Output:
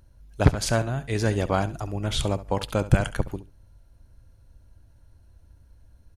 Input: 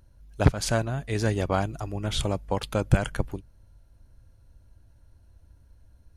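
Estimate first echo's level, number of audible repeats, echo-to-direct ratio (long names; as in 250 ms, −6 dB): −15.5 dB, 2, −15.5 dB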